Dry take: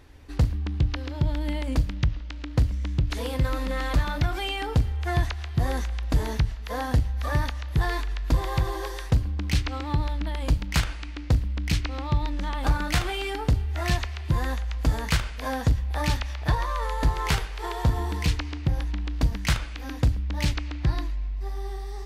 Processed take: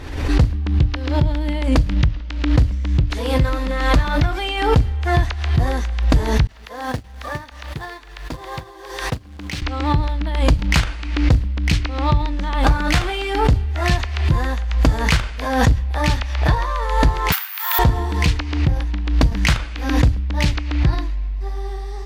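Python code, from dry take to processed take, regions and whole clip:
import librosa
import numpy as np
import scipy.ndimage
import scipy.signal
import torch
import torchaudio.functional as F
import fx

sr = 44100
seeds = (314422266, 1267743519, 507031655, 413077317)

y = fx.chain(x, sr, fx.highpass(hz=250.0, slope=6),
    fx.quant_float(bits=2),
    fx.upward_expand(threshold_db=-40.0, expansion=2.5), at=(6.47, 9.62))
y = fx.chain(y, sr, fx.resample_bad(factor=3, down='none', up='zero_stuff'),
    fx.highpass(hz=1100.0, slope=24), at=(17.32, 17.79))
y = fx.high_shelf(y, sr, hz=9600.0, db=-11.0)
y = fx.pre_swell(y, sr, db_per_s=59.0)
y = y * 10.0 ** (6.0 / 20.0)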